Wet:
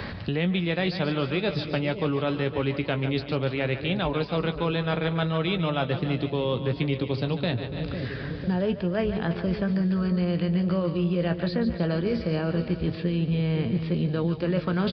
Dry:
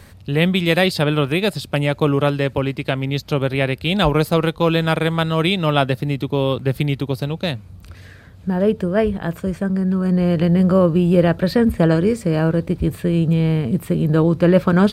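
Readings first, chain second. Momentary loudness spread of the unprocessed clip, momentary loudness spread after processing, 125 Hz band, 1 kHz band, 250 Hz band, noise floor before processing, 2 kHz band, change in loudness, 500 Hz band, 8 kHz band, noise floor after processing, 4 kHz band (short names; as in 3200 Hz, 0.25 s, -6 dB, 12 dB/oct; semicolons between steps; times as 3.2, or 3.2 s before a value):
8 LU, 3 LU, -8.0 dB, -9.0 dB, -8.0 dB, -42 dBFS, -8.0 dB, -8.5 dB, -9.0 dB, n/a, -36 dBFS, -8.0 dB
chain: doubler 17 ms -11 dB; echo 0.329 s -21.5 dB; downsampling 11025 Hz; reverse; compressor 6:1, threshold -21 dBFS, peak gain reduction 13 dB; reverse; split-band echo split 540 Hz, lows 0.501 s, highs 0.144 s, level -10.5 dB; three-band squash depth 70%; gain -2 dB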